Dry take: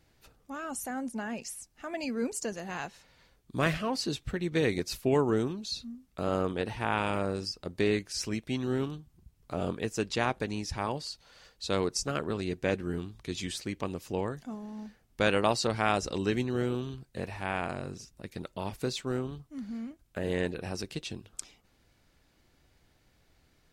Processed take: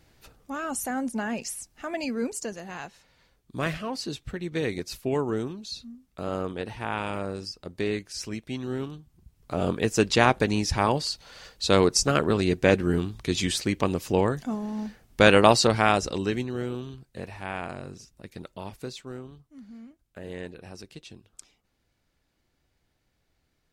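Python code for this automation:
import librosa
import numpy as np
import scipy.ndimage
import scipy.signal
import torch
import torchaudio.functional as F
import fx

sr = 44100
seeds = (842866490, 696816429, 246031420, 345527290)

y = fx.gain(x, sr, db=fx.line((1.75, 6.0), (2.72, -1.0), (8.91, -1.0), (10.0, 9.5), (15.56, 9.5), (16.56, -1.0), (18.48, -1.0), (19.17, -7.0)))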